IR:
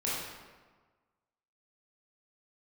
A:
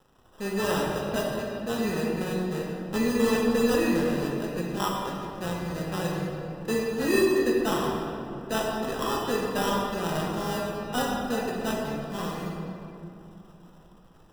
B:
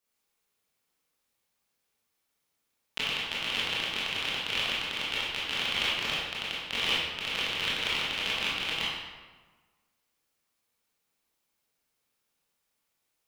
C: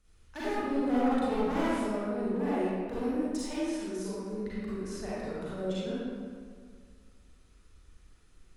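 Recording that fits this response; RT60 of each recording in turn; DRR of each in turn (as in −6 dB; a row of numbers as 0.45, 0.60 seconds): B; 2.9, 1.4, 1.9 seconds; −4.0, −8.0, −10.5 decibels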